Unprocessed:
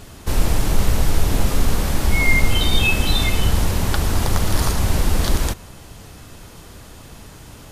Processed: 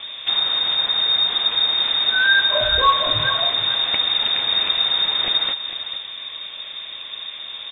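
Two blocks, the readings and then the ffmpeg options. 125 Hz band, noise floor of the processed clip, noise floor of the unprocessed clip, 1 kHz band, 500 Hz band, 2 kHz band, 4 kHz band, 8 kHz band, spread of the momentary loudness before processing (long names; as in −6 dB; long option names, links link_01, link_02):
−19.5 dB, −35 dBFS, −41 dBFS, +4.5 dB, −1.5 dB, +3.0 dB, +12.0 dB, below −40 dB, 5 LU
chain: -filter_complex "[0:a]equalizer=frequency=660:width_type=o:width=0.63:gain=-8.5,acrossover=split=2000[link_01][link_02];[link_01]acompressor=threshold=-27dB:ratio=5[link_03];[link_03][link_02]amix=inputs=2:normalize=0,asplit=2[link_04][link_05];[link_05]adelay=449,volume=-9dB,highshelf=frequency=4000:gain=-10.1[link_06];[link_04][link_06]amix=inputs=2:normalize=0,lowpass=frequency=3100:width_type=q:width=0.5098,lowpass=frequency=3100:width_type=q:width=0.6013,lowpass=frequency=3100:width_type=q:width=0.9,lowpass=frequency=3100:width_type=q:width=2.563,afreqshift=-3700,volume=7dB"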